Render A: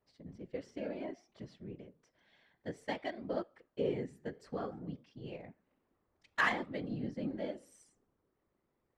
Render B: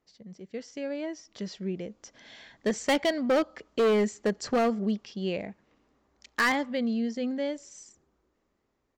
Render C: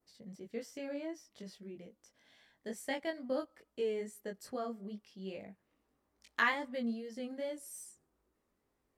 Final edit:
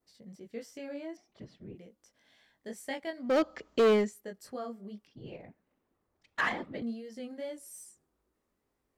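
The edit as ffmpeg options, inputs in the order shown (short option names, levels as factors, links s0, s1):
-filter_complex "[0:a]asplit=2[s0][s1];[2:a]asplit=4[s2][s3][s4][s5];[s2]atrim=end=1.172[s6];[s0]atrim=start=1.168:end=1.752[s7];[s3]atrim=start=1.748:end=3.43[s8];[1:a]atrim=start=3.19:end=4.16[s9];[s4]atrim=start=3.92:end=5.072[s10];[s1]atrim=start=5.068:end=6.822[s11];[s5]atrim=start=6.818[s12];[s6][s7]acrossfade=d=0.004:c1=hsin:c2=hsin[s13];[s13][s8]acrossfade=d=0.004:c1=hsin:c2=hsin[s14];[s14][s9]acrossfade=d=0.24:c1=tri:c2=tri[s15];[s15][s10]acrossfade=d=0.24:c1=tri:c2=tri[s16];[s16][s11]acrossfade=d=0.004:c1=hsin:c2=hsin[s17];[s17][s12]acrossfade=d=0.004:c1=hsin:c2=hsin"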